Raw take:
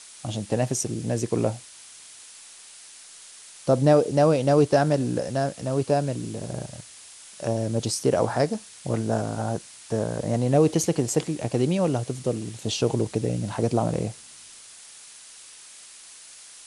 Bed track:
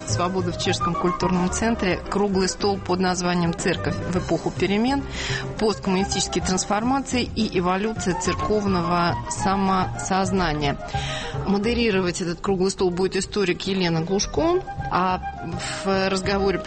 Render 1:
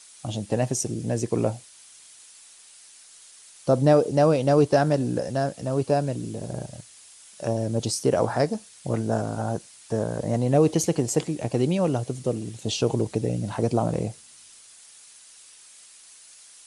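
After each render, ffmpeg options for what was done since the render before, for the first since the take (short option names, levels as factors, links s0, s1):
-af "afftdn=nr=6:nf=-47"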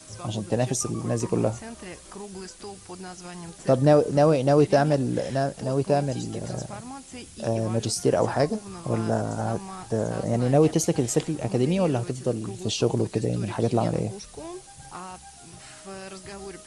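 -filter_complex "[1:a]volume=0.126[s0];[0:a][s0]amix=inputs=2:normalize=0"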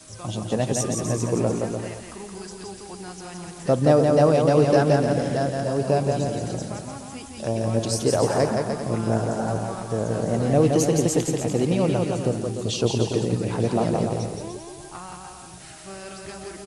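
-af "aecho=1:1:170|297.5|393.1|464.8|518.6:0.631|0.398|0.251|0.158|0.1"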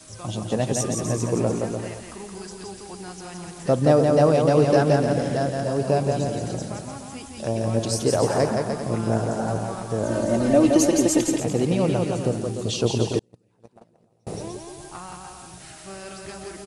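-filter_complex "[0:a]asettb=1/sr,asplit=3[s0][s1][s2];[s0]atrim=end=10.034[s3];[s1]atrim=start=10.03:end=11.4,asetpts=PTS-STARTPTS,afade=t=in:d=0.004:c=qsin,afade=t=out:st=1.366:d=0.004:c=qsin,aecho=1:1:3.3:0.94,atrim=end_sample=60417[s4];[s2]atrim=start=11.396[s5];[s3][s4]acrossfade=d=0.004:c1=hsin:c2=qsin[s6];[s6][s5]acrossfade=d=0.004:c1=qsin:c2=hsin,asettb=1/sr,asplit=3[s7][s8][s9];[s7]atrim=end=13.194[s10];[s8]atrim=start=13.19:end=14.27,asetpts=PTS-STARTPTS,afade=t=in:d=0.004:c=qsin,afade=t=out:st=1.076:d=0.004:c=qsin,agate=range=0.0112:threshold=0.141:ratio=16:release=100:detection=peak[s11];[s9]atrim=start=14.266[s12];[s10][s11]acrossfade=d=0.004:c1=hsin:c2=qsin[s13];[s13][s12]acrossfade=d=0.004:c1=qsin:c2=hsin"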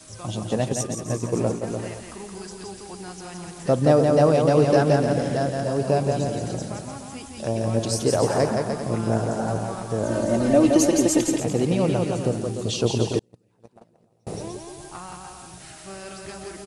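-filter_complex "[0:a]asplit=3[s0][s1][s2];[s0]afade=t=out:st=0.68:d=0.02[s3];[s1]agate=range=0.0224:threshold=0.0794:ratio=3:release=100:detection=peak,afade=t=in:st=0.68:d=0.02,afade=t=out:st=1.66:d=0.02[s4];[s2]afade=t=in:st=1.66:d=0.02[s5];[s3][s4][s5]amix=inputs=3:normalize=0"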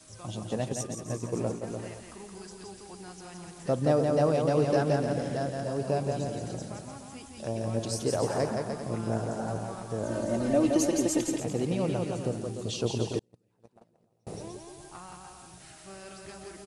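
-af "volume=0.422"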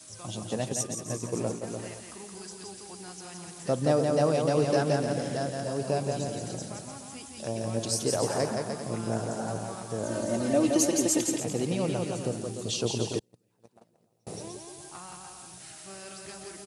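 -af "highpass=89,highshelf=f=3400:g=7.5"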